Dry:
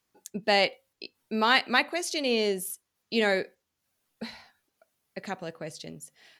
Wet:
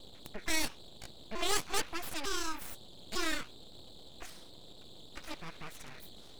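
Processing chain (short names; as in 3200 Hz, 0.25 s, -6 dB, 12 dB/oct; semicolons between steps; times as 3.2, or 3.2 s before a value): trilling pitch shifter +8 st, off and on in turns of 0.45 s; band noise 1500–2300 Hz -45 dBFS; full-wave rectifier; gain -5.5 dB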